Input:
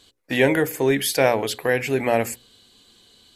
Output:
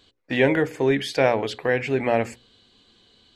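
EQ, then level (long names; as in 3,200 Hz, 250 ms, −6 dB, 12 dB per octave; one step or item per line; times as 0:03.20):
head-to-tape spacing loss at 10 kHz 29 dB
high-shelf EQ 2,400 Hz +10 dB
0.0 dB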